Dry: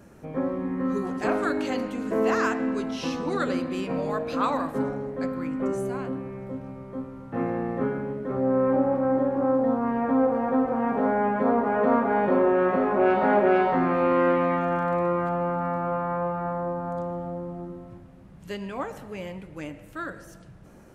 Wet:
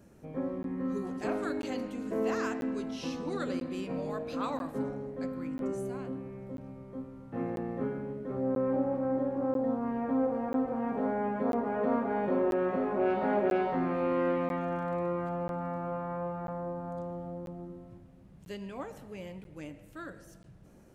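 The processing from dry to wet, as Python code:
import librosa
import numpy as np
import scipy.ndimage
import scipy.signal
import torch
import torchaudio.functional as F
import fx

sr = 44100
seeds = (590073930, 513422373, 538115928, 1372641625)

y = fx.peak_eq(x, sr, hz=1300.0, db=-5.0, octaves=1.8)
y = fx.buffer_crackle(y, sr, first_s=0.63, period_s=0.99, block=512, kind='zero')
y = y * librosa.db_to_amplitude(-6.0)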